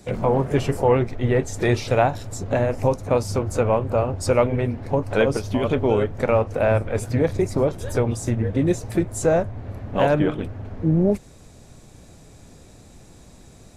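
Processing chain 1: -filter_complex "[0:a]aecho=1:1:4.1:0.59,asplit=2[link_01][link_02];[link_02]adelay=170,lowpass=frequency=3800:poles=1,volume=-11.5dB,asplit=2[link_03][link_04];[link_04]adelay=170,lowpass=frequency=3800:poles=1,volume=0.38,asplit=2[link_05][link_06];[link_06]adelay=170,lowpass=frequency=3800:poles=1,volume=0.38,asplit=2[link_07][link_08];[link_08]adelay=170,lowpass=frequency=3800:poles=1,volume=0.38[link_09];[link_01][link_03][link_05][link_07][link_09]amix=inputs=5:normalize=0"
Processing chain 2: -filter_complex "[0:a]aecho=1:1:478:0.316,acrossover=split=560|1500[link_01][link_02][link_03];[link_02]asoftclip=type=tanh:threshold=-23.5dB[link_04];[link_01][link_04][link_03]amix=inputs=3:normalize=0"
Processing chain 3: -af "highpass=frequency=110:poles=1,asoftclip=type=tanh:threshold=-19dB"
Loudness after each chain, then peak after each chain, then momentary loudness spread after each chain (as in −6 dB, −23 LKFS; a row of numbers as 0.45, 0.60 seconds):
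−21.0, −22.5, −26.5 LKFS; −3.5, −7.0, −19.0 dBFS; 6, 5, 4 LU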